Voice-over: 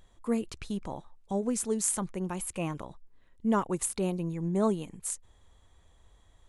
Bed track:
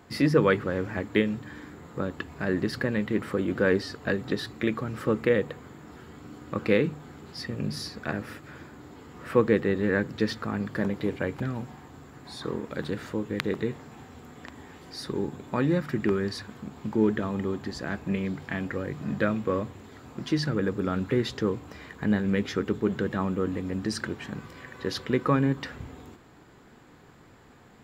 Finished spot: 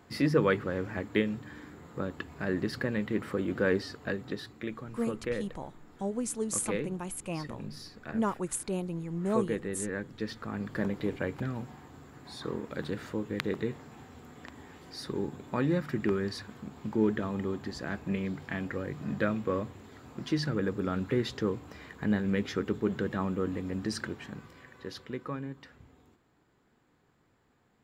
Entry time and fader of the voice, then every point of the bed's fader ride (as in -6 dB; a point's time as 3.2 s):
4.70 s, -3.0 dB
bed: 3.82 s -4 dB
4.68 s -10.5 dB
10.13 s -10.5 dB
10.78 s -3.5 dB
23.97 s -3.5 dB
25.53 s -15.5 dB